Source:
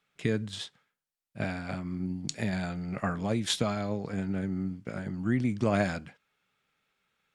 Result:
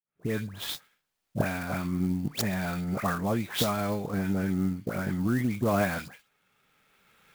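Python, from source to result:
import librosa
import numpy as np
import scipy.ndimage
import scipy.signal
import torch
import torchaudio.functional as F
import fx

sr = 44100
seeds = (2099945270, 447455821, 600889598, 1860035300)

y = fx.fade_in_head(x, sr, length_s=0.52)
y = fx.recorder_agc(y, sr, target_db=-19.0, rise_db_per_s=12.0, max_gain_db=30)
y = fx.dynamic_eq(y, sr, hz=1100.0, q=1.2, threshold_db=-46.0, ratio=4.0, max_db=5)
y = fx.dispersion(y, sr, late='highs', ms=130.0, hz=2500.0)
y = fx.clock_jitter(y, sr, seeds[0], jitter_ms=0.028)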